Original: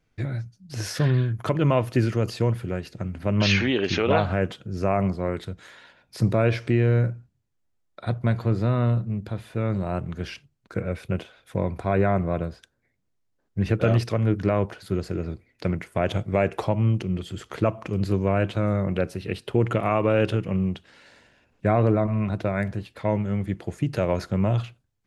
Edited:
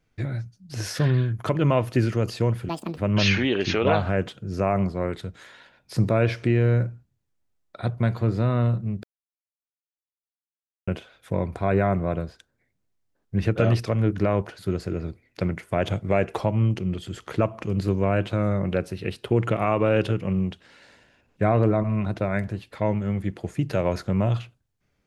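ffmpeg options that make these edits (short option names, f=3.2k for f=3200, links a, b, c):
-filter_complex "[0:a]asplit=5[a][b][c][d][e];[a]atrim=end=2.694[f];[b]atrim=start=2.69:end=3.21,asetpts=PTS-STARTPTS,asetrate=80703,aresample=44100,atrim=end_sample=12531,asetpts=PTS-STARTPTS[g];[c]atrim=start=3.206:end=9.27,asetpts=PTS-STARTPTS,afade=t=out:st=6.06:d=0.004:c=hsin[h];[d]atrim=start=9.27:end=11.11,asetpts=PTS-STARTPTS,volume=0[i];[e]atrim=start=11.11,asetpts=PTS-STARTPTS,afade=t=in:d=0.004:c=hsin[j];[f][g]acrossfade=d=0.004:c1=hsin:c2=hsin[k];[h][i][j]concat=n=3:v=0:a=1[l];[k][l]acrossfade=d=0.004:c1=hsin:c2=hsin"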